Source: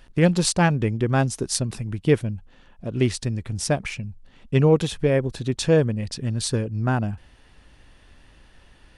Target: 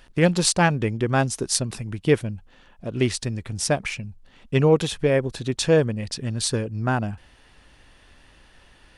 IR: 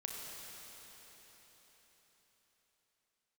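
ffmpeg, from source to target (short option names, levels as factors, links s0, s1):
-af "lowshelf=f=340:g=-5.5,volume=1.33"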